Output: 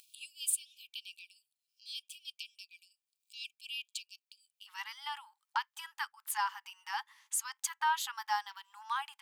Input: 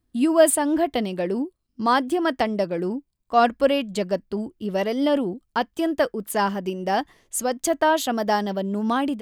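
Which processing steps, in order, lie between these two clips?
upward compression, threshold −20 dBFS
linear-phase brick-wall high-pass 2,300 Hz, from 0:04.66 810 Hz
level −8.5 dB

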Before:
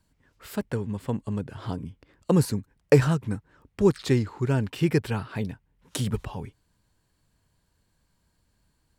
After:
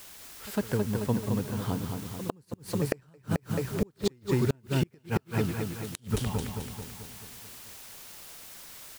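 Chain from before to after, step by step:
echo ahead of the sound 104 ms −19 dB
bit-depth reduction 8 bits, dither triangular
on a send: repeating echo 218 ms, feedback 56%, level −5.5 dB
on the sum: gate with flip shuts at −14 dBFS, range −36 dB

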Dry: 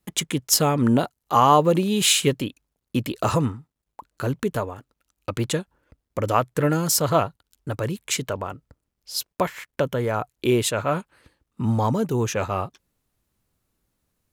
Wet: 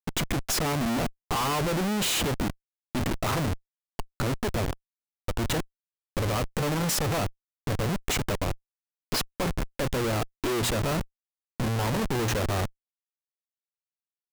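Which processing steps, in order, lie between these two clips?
mains-hum notches 60/120/180/240/300 Hz
comparator with hysteresis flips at −29 dBFS
level −1.5 dB

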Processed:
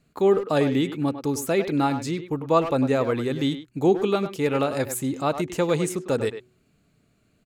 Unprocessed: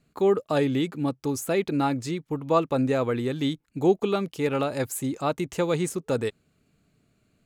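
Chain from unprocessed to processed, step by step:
hum removal 123.3 Hz, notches 3
far-end echo of a speakerphone 100 ms, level −9 dB
level +2 dB

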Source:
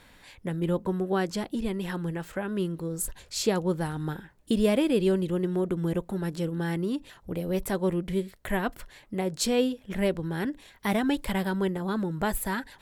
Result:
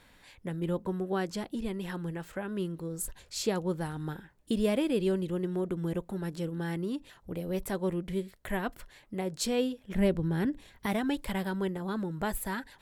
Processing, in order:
0:09.95–0:10.86: low-shelf EQ 330 Hz +9 dB
level −4.5 dB

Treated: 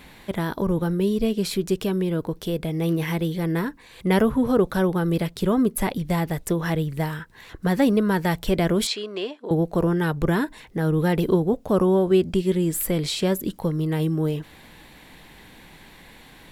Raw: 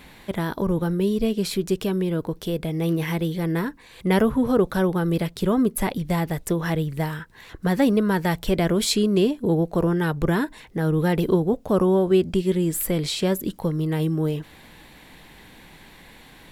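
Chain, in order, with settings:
0:08.87–0:09.51: band-pass filter 640–4,100 Hz

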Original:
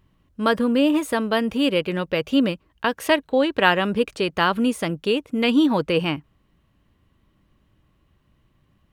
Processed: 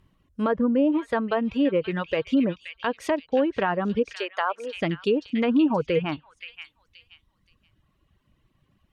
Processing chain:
treble cut that deepens with the level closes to 1,200 Hz, closed at −16 dBFS
0:04.14–0:04.77: high-pass filter 470 Hz 24 dB per octave
reverb reduction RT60 1.9 s
brickwall limiter −13.5 dBFS, peak gain reduction 6.5 dB
echo through a band-pass that steps 526 ms, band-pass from 2,800 Hz, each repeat 0.7 octaves, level −4 dB

